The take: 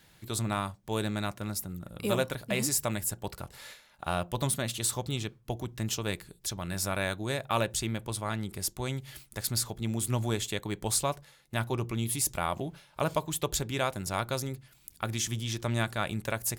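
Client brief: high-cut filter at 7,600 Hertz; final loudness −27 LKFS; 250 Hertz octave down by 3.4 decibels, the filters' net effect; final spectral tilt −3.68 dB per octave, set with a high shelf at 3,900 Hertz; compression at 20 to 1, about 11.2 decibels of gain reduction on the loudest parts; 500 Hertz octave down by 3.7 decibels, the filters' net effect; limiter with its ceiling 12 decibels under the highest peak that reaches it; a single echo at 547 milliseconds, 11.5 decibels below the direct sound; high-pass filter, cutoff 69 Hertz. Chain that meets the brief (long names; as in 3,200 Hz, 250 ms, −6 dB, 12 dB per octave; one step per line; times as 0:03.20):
high-pass filter 69 Hz
low-pass filter 7,600 Hz
parametric band 250 Hz −3.5 dB
parametric band 500 Hz −4 dB
high-shelf EQ 3,900 Hz +6 dB
downward compressor 20 to 1, threshold −35 dBFS
brickwall limiter −30.5 dBFS
single-tap delay 547 ms −11.5 dB
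level +15.5 dB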